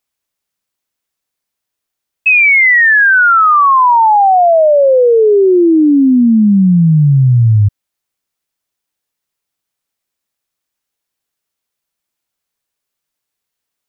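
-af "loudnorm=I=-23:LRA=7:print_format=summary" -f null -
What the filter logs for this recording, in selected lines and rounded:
Input Integrated:     -7.9 LUFS
Input True Peak:      -4.6 dBTP
Input LRA:             4.2 LU
Input Threshold:     -17.9 LUFS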